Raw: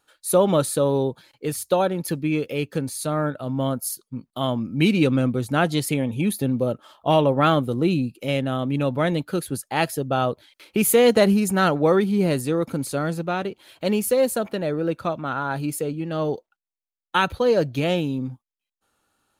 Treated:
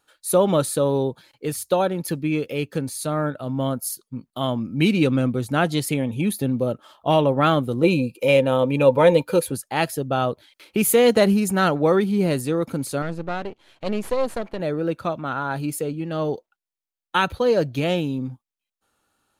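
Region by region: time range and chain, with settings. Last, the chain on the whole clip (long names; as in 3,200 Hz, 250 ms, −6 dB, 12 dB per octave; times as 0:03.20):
0:07.83–0:09.52: high-shelf EQ 4,200 Hz +5.5 dB + hollow resonant body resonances 510/920/2,400 Hz, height 16 dB
0:13.02–0:14.60: gain on one half-wave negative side −12 dB + low-pass filter 11,000 Hz + high-shelf EQ 5,300 Hz −9.5 dB
whole clip: no processing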